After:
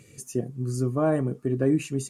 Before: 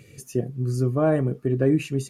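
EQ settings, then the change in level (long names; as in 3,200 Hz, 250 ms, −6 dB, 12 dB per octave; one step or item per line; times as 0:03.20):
octave-band graphic EQ 250/1,000/8,000 Hz +4/+5/+10 dB
−5.0 dB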